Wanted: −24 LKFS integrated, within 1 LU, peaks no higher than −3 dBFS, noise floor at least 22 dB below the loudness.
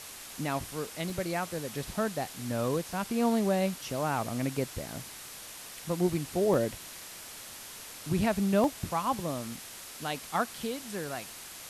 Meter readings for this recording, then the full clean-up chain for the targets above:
number of dropouts 4; longest dropout 2.0 ms; background noise floor −46 dBFS; target noise floor −55 dBFS; integrated loudness −32.5 LKFS; sample peak −13.5 dBFS; target loudness −24.0 LKFS
→ repair the gap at 0:01.10/0:02.93/0:06.54/0:08.64, 2 ms
noise reduction from a noise print 9 dB
level +8.5 dB

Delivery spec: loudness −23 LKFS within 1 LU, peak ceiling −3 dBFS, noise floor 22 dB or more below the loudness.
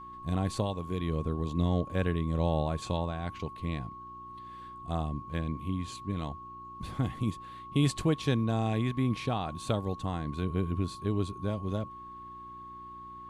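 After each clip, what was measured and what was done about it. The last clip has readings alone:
mains hum 60 Hz; hum harmonics up to 360 Hz; level of the hum −56 dBFS; interfering tone 1,100 Hz; level of the tone −43 dBFS; integrated loudness −32.5 LKFS; sample peak −13.5 dBFS; target loudness −23.0 LKFS
→ hum removal 60 Hz, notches 6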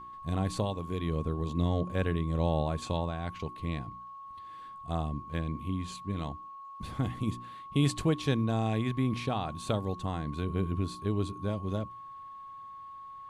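mains hum none found; interfering tone 1,100 Hz; level of the tone −43 dBFS
→ notch filter 1,100 Hz, Q 30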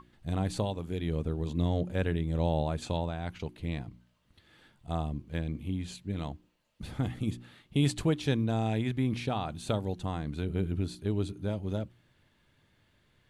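interfering tone none found; integrated loudness −33.0 LKFS; sample peak −14.0 dBFS; target loudness −23.0 LKFS
→ level +10 dB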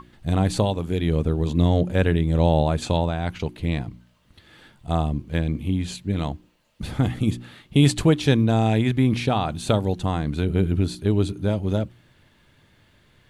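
integrated loudness −23.0 LKFS; sample peak −4.0 dBFS; background noise floor −59 dBFS

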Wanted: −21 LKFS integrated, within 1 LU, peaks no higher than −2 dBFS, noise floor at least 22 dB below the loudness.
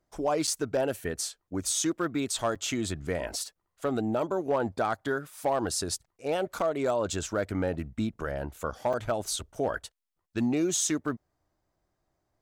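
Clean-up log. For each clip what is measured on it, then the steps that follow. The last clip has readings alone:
share of clipped samples 0.3%; peaks flattened at −19.5 dBFS; number of dropouts 4; longest dropout 6.2 ms; integrated loudness −30.5 LKFS; sample peak −19.5 dBFS; target loudness −21.0 LKFS
→ clipped peaks rebuilt −19.5 dBFS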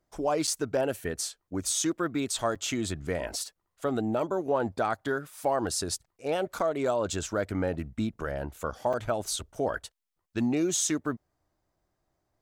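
share of clipped samples 0.0%; number of dropouts 4; longest dropout 6.2 ms
→ repair the gap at 0:00.47/0:02.55/0:06.59/0:08.93, 6.2 ms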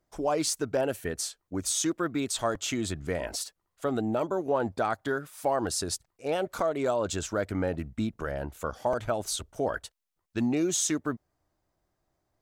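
number of dropouts 0; integrated loudness −30.5 LKFS; sample peak −15.0 dBFS; target loudness −21.0 LKFS
→ level +9.5 dB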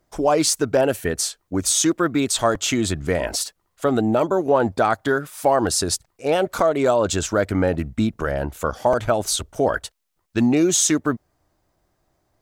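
integrated loudness −21.0 LKFS; sample peak −5.5 dBFS; background noise floor −72 dBFS

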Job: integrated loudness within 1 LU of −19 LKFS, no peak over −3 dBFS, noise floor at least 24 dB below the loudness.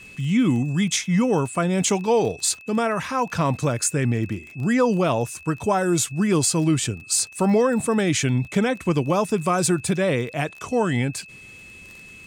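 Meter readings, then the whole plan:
crackle rate 21 per second; interfering tone 2,600 Hz; level of the tone −42 dBFS; integrated loudness −22.0 LKFS; sample peak −9.0 dBFS; target loudness −19.0 LKFS
→ click removal
notch filter 2,600 Hz, Q 30
level +3 dB

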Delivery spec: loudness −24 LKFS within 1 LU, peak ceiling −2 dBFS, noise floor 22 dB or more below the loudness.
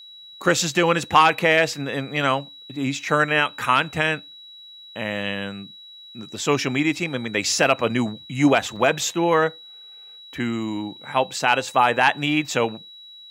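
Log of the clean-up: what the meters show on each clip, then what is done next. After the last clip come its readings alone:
number of dropouts 1; longest dropout 4.1 ms; interfering tone 3,900 Hz; level of the tone −41 dBFS; integrated loudness −21.5 LKFS; sample peak −5.0 dBFS; target loudness −24.0 LKFS
→ repair the gap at 0:08.76, 4.1 ms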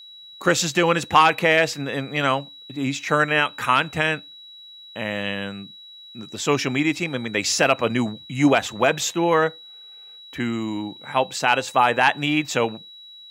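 number of dropouts 0; interfering tone 3,900 Hz; level of the tone −41 dBFS
→ notch filter 3,900 Hz, Q 30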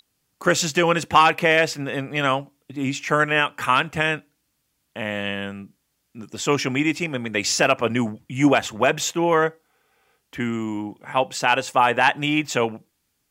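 interfering tone none found; integrated loudness −21.5 LKFS; sample peak −5.0 dBFS; target loudness −24.0 LKFS
→ level −2.5 dB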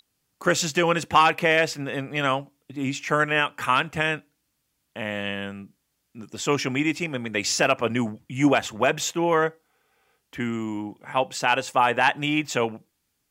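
integrated loudness −24.0 LKFS; sample peak −7.5 dBFS; background noise floor −75 dBFS

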